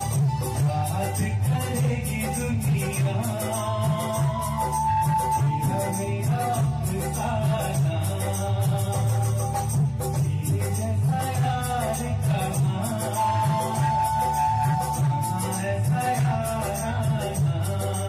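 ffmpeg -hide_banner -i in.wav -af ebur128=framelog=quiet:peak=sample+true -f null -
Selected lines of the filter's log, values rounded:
Integrated loudness:
  I:         -24.8 LUFS
  Threshold: -34.7 LUFS
Loudness range:
  LRA:         1.3 LU
  Threshold: -44.7 LUFS
  LRA low:   -25.2 LUFS
  LRA high:  -23.9 LUFS
Sample peak:
  Peak:      -15.2 dBFS
True peak:
  Peak:      -15.1 dBFS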